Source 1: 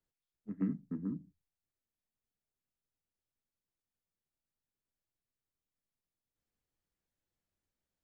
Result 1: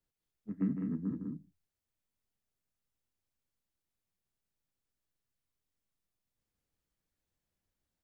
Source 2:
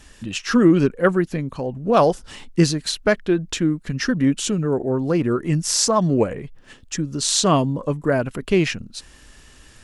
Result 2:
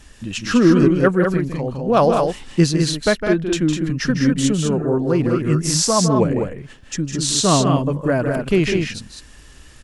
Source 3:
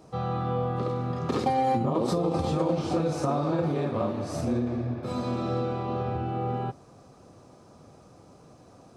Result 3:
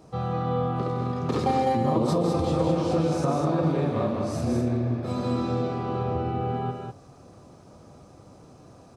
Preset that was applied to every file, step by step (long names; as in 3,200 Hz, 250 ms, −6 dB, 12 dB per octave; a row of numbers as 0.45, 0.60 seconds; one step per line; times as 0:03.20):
low-shelf EQ 170 Hz +3.5 dB
on a send: loudspeakers that aren't time-aligned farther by 54 metres −8 dB, 69 metres −5 dB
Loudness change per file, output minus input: +2.5, +2.0, +2.5 LU